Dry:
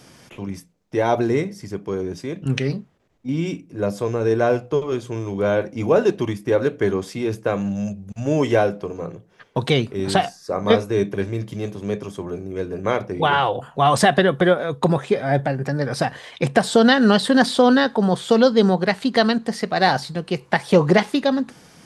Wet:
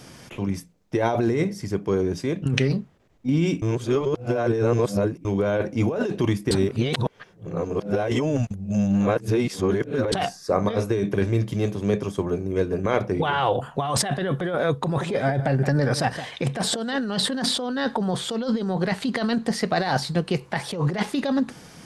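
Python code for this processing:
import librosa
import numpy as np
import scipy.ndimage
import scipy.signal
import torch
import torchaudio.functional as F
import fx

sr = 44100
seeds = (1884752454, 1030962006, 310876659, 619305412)

y = fx.transient(x, sr, attack_db=3, sustain_db=-2, at=(12.02, 13.01))
y = fx.echo_single(y, sr, ms=169, db=-16.5, at=(14.82, 16.96))
y = fx.edit(y, sr, fx.reverse_span(start_s=3.62, length_s=1.63),
    fx.reverse_span(start_s=6.51, length_s=3.61), tone=tone)
y = fx.low_shelf(y, sr, hz=130.0, db=4.0)
y = fx.over_compress(y, sr, threshold_db=-21.0, ratio=-1.0)
y = y * librosa.db_to_amplitude(-1.0)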